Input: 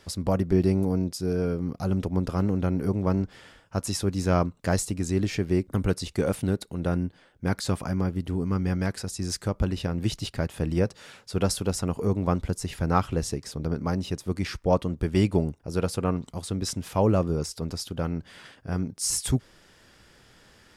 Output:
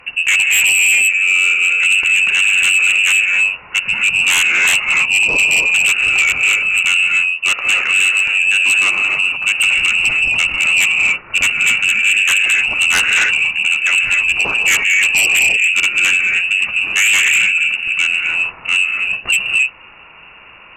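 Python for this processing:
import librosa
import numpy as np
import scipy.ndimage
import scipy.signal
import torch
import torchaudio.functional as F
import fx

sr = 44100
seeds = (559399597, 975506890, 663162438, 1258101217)

y = fx.rev_gated(x, sr, seeds[0], gate_ms=320, shape='rising', drr_db=2.0)
y = fx.freq_invert(y, sr, carrier_hz=2800)
y = fx.fold_sine(y, sr, drive_db=12, ceiling_db=-6.5)
y = y * librosa.db_to_amplitude(-2.0)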